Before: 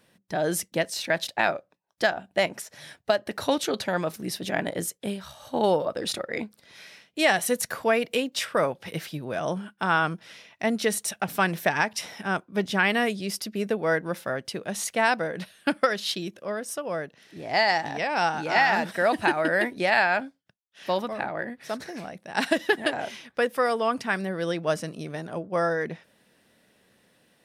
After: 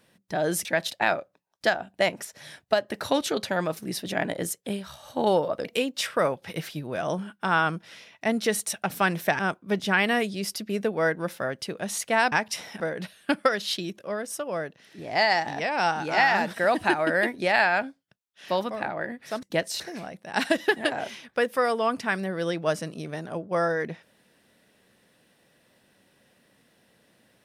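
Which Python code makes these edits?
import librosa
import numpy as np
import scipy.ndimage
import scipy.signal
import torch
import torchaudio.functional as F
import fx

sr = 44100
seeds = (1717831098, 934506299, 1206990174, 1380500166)

y = fx.edit(x, sr, fx.move(start_s=0.65, length_s=0.37, to_s=21.81),
    fx.cut(start_s=6.02, length_s=2.01),
    fx.move(start_s=11.77, length_s=0.48, to_s=15.18), tone=tone)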